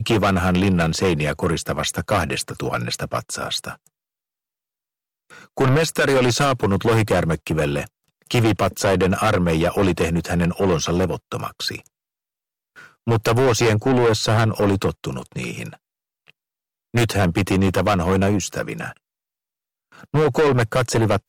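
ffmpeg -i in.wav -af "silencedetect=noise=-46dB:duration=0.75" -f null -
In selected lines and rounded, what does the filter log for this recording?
silence_start: 3.87
silence_end: 5.30 | silence_duration: 1.43
silence_start: 11.87
silence_end: 12.76 | silence_duration: 0.89
silence_start: 18.97
silence_end: 19.92 | silence_duration: 0.95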